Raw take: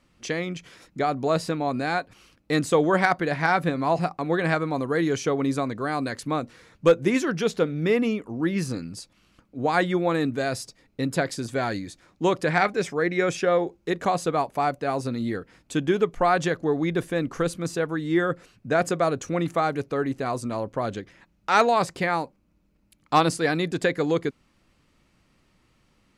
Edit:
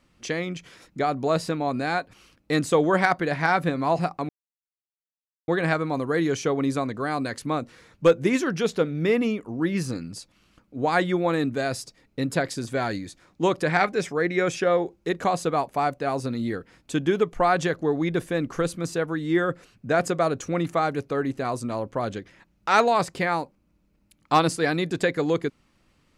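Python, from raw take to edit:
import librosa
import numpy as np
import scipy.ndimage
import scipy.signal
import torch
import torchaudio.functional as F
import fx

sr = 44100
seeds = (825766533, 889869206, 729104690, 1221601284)

y = fx.edit(x, sr, fx.insert_silence(at_s=4.29, length_s=1.19), tone=tone)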